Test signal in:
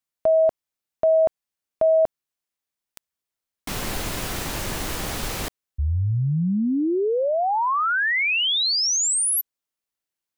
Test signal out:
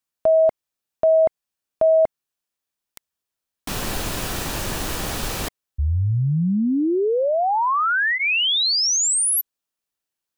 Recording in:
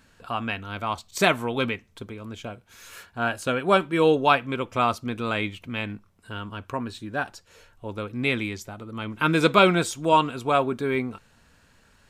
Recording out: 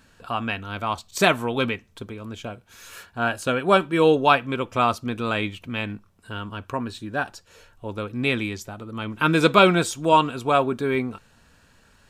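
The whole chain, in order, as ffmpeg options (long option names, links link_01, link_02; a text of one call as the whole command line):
ffmpeg -i in.wav -af "bandreject=frequency=2100:width=14,volume=2dB" out.wav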